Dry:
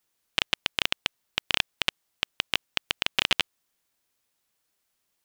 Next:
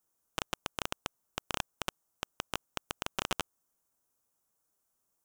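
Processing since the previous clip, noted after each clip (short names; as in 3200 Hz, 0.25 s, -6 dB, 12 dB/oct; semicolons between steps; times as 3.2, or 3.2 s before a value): band shelf 2900 Hz -12.5 dB; gain -2 dB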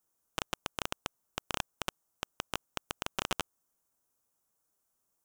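nothing audible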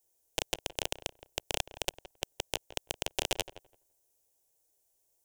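fixed phaser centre 510 Hz, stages 4; darkening echo 0.168 s, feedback 15%, low-pass 1700 Hz, level -14 dB; gain +5.5 dB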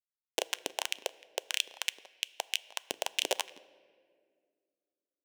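crossover distortion -41 dBFS; LFO high-pass saw up 3.1 Hz 230–3200 Hz; on a send at -17.5 dB: reverb RT60 2.0 s, pre-delay 5 ms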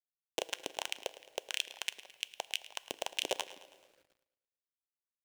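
bit-crush 11-bit; soft clip -12 dBFS, distortion -17 dB; feedback echo 0.108 s, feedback 54%, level -17 dB; gain -2.5 dB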